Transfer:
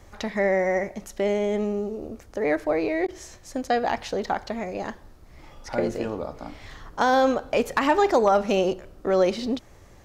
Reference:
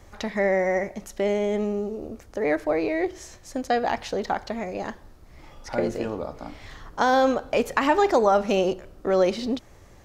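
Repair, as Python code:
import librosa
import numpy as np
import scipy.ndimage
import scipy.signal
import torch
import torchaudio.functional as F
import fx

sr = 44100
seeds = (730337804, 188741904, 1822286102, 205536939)

y = fx.fix_declip(x, sr, threshold_db=-10.5)
y = fx.fix_interpolate(y, sr, at_s=(3.07,), length_ms=11.0)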